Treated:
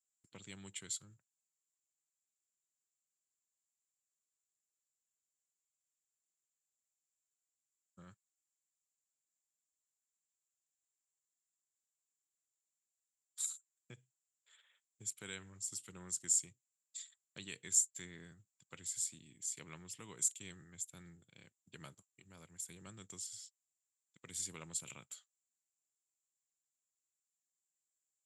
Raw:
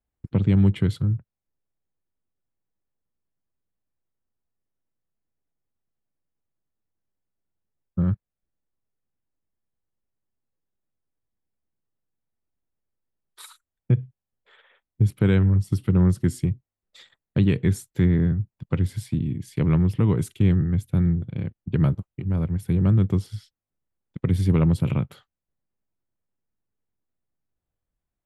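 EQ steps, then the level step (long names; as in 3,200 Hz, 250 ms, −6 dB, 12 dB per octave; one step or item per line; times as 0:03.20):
resonant band-pass 7,300 Hz, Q 11
+18.0 dB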